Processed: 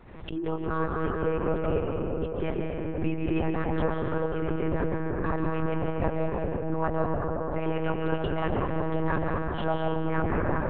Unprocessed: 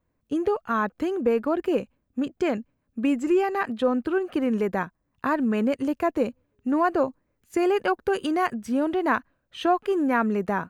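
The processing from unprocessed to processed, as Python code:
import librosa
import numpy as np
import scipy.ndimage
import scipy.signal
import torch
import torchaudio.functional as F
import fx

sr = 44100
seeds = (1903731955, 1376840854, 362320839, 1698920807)

y = fx.hum_notches(x, sr, base_hz=50, count=9)
y = fx.echo_split(y, sr, split_hz=770.0, low_ms=444, high_ms=142, feedback_pct=52, wet_db=-12)
y = fx.rev_freeverb(y, sr, rt60_s=4.5, hf_ratio=0.25, predelay_ms=100, drr_db=-0.5)
y = fx.lpc_monotone(y, sr, seeds[0], pitch_hz=160.0, order=10)
y = fx.pre_swell(y, sr, db_per_s=65.0)
y = y * librosa.db_to_amplitude(-6.5)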